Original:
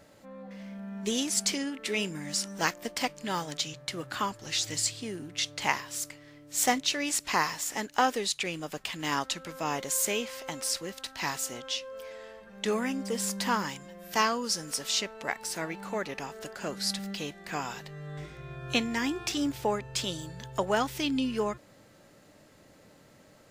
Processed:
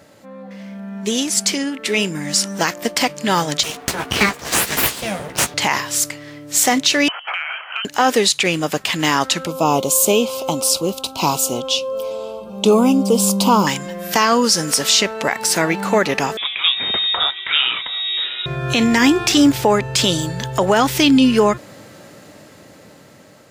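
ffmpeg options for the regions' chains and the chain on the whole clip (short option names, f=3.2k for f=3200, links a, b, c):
-filter_complex "[0:a]asettb=1/sr,asplit=3[a][b][c];[a]atrim=end=3.634[d];[b]atrim=start=3.63:end=5.54,asetpts=PTS-STARTPTS,afade=t=in:d=0.004:c=qsin,afade=t=out:st=1.906:d=0.004:c=qsin,equalizer=f=1.5k:t=o:w=1.2:g=6,aeval=exprs='abs(val(0))':c=same,asplit=2[e][f];[f]adelay=15,volume=-7dB[g];[e][g]amix=inputs=2:normalize=0,atrim=end_sample=84231[h];[c]atrim=start=5.536[i];[d][h]acrossfade=d=0.004:c1=hsin:c2=qsin[j];[j][i]acrossfade=d=0.004:c1=qsin:c2=hsin,asettb=1/sr,asplit=3[k][l][m];[k]atrim=end=7.084[n];[l]atrim=start=7.08:end=7.85,asetpts=PTS-STARTPTS,afade=t=in:d=0.004:c=qsin,afade=t=out:st=0.766:d=0.004:c=qsin,lowpass=f=2.8k:t=q:w=0.5098,lowpass=f=2.8k:t=q:w=0.6013,lowpass=f=2.8k:t=q:w=0.9,lowpass=f=2.8k:t=q:w=2.563,afreqshift=-3300,acompressor=threshold=-36dB:ratio=8:attack=3.2:release=140:knee=1:detection=peak,highpass=f=650:w=0.5412,highpass=f=650:w=1.3066[o];[m]atrim=start=7.846[p];[n][o]acrossfade=d=0.004:c1=hsin:c2=qsin[q];[q][p]acrossfade=d=0.004:c1=qsin:c2=hsin,asettb=1/sr,asplit=3[r][s][t];[r]atrim=end=9.464[u];[s]atrim=start=9.46:end=13.67,asetpts=PTS-STARTPTS,afade=t=in:d=0.004:c=qsin,afade=t=out:st=4.206:d=0.004:c=qsin,asuperstop=centerf=1800:order=4:qfactor=1.1,equalizer=f=5.6k:w=0.66:g=-6[v];[t]atrim=start=13.666[w];[u][v]acrossfade=d=0.004:c1=hsin:c2=qsin[x];[x][w]acrossfade=d=0.004:c1=qsin:c2=hsin,asettb=1/sr,asplit=3[y][z][aa];[y]atrim=end=16.374[ab];[z]atrim=start=16.37:end=18.46,asetpts=PTS-STARTPTS,afade=t=in:d=0.004:c=qsin,afade=t=out:st=2.086:d=0.004:c=qsin,lowpass=f=3.3k:t=q:w=0.5098,lowpass=f=3.3k:t=q:w=0.6013,lowpass=f=3.3k:t=q:w=0.9,lowpass=f=3.3k:t=q:w=2.563,afreqshift=-3900,aecho=1:1:715:0.106,atrim=end_sample=92169[ac];[aa]atrim=start=18.456[ad];[ab][ac]acrossfade=d=0.004:c1=hsin:c2=qsin[ae];[ae][ad]acrossfade=d=0.004:c1=qsin:c2=hsin,dynaudnorm=f=710:g=7:m=11.5dB,highpass=80,alimiter=level_in=12dB:limit=-1dB:release=50:level=0:latency=1,volume=-3dB"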